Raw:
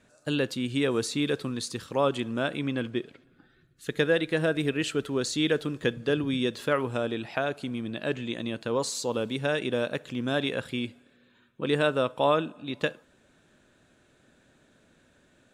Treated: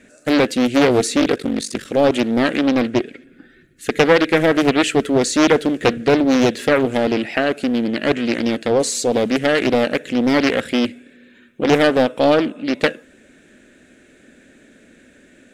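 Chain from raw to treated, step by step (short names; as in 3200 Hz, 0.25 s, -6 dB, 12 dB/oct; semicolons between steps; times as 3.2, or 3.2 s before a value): graphic EQ 125/250/500/1000/2000/4000/8000 Hz -8/+8/+4/-11/+10/-4/+4 dB; 1.2–1.86 ring modulator 24 Hz; in parallel at -3 dB: soft clip -21 dBFS, distortion -11 dB; on the sum: Doppler distortion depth 0.57 ms; gain +5 dB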